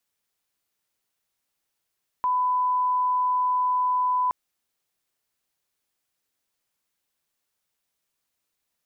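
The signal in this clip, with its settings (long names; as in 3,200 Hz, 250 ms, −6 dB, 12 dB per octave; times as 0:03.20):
line-up tone −20 dBFS 2.07 s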